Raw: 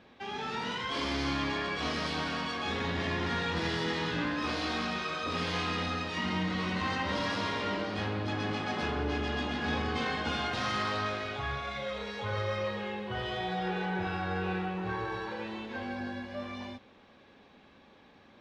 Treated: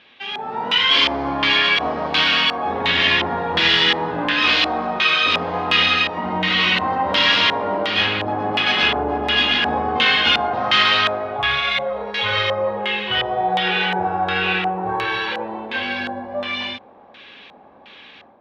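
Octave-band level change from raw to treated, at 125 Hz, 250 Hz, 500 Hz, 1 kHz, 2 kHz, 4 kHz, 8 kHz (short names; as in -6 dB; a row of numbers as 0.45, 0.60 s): +3.5 dB, +6.5 dB, +11.5 dB, +14.0 dB, +16.5 dB, +20.0 dB, n/a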